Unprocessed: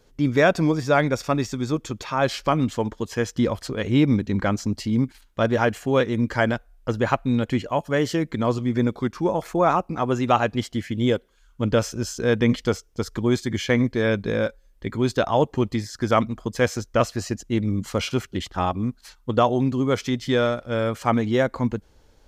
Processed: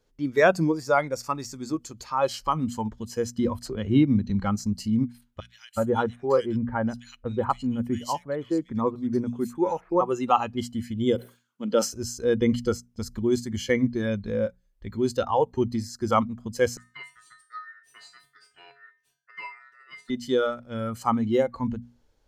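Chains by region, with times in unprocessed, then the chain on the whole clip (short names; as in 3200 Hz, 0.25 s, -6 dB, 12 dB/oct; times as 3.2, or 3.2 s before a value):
3.65–4.3 high shelf 5700 Hz -5 dB + three-band squash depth 40%
5.4–10.01 bands offset in time highs, lows 0.37 s, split 2200 Hz + mismatched tape noise reduction decoder only
11.15–11.94 HPF 200 Hz 24 dB/oct + sustainer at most 140 dB/s
16.77–20.1 ring modulator 1600 Hz + resonator 140 Hz, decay 0.39 s, harmonics odd, mix 90%
whole clip: spectral noise reduction 12 dB; notches 60/120/180/240 Hz; dynamic EQ 3600 Hz, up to -5 dB, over -47 dBFS, Q 1.2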